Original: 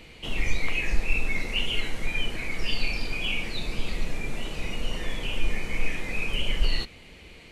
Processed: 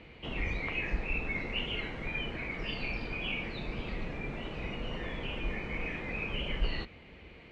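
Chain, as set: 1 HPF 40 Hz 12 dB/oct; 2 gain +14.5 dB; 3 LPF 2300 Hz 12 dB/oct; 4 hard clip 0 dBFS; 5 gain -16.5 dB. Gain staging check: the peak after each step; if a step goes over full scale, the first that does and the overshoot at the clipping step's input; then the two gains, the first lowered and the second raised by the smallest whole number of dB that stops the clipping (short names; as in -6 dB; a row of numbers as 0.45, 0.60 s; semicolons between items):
-16.0, -1.5, -2.0, -2.0, -18.5 dBFS; no overload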